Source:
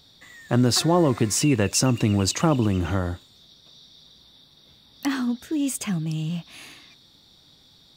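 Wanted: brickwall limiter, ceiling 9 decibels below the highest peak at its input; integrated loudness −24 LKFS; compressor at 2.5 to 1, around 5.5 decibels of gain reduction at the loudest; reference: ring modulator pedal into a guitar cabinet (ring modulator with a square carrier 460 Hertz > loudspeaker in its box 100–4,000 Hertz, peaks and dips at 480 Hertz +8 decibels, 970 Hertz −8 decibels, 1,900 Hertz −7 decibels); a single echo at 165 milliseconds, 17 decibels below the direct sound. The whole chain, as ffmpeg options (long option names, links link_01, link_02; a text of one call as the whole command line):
ffmpeg -i in.wav -af "acompressor=threshold=-23dB:ratio=2.5,alimiter=limit=-19dB:level=0:latency=1,aecho=1:1:165:0.141,aeval=exprs='val(0)*sgn(sin(2*PI*460*n/s))':channel_layout=same,highpass=100,equalizer=frequency=480:width_type=q:width=4:gain=8,equalizer=frequency=970:width_type=q:width=4:gain=-8,equalizer=frequency=1900:width_type=q:width=4:gain=-7,lowpass=frequency=4000:width=0.5412,lowpass=frequency=4000:width=1.3066,volume=5.5dB" out.wav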